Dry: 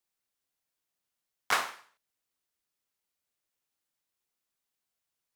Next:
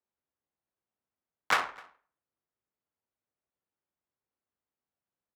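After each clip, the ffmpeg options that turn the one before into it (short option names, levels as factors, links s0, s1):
-filter_complex "[0:a]adynamicsmooth=sensitivity=3.5:basefreq=1400,asplit=2[s0][s1];[s1]adelay=256.6,volume=0.0631,highshelf=f=4000:g=-5.77[s2];[s0][s2]amix=inputs=2:normalize=0,afreqshift=41,volume=1.26"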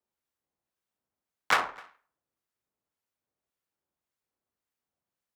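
-filter_complex "[0:a]acrossover=split=1200[s0][s1];[s0]aeval=exprs='val(0)*(1-0.5/2+0.5/2*cos(2*PI*1.8*n/s))':c=same[s2];[s1]aeval=exprs='val(0)*(1-0.5/2-0.5/2*cos(2*PI*1.8*n/s))':c=same[s3];[s2][s3]amix=inputs=2:normalize=0,volume=1.68"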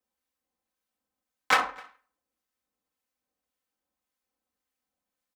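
-af "aecho=1:1:3.9:0.81"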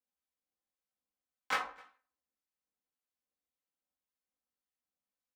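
-af "flanger=delay=15.5:depth=2.4:speed=1,volume=0.398"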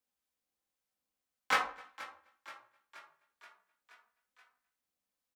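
-filter_complex "[0:a]asplit=7[s0][s1][s2][s3][s4][s5][s6];[s1]adelay=477,afreqshift=36,volume=0.141[s7];[s2]adelay=954,afreqshift=72,volume=0.0902[s8];[s3]adelay=1431,afreqshift=108,volume=0.0575[s9];[s4]adelay=1908,afreqshift=144,volume=0.0372[s10];[s5]adelay=2385,afreqshift=180,volume=0.0237[s11];[s6]adelay=2862,afreqshift=216,volume=0.0151[s12];[s0][s7][s8][s9][s10][s11][s12]amix=inputs=7:normalize=0,volume=1.58"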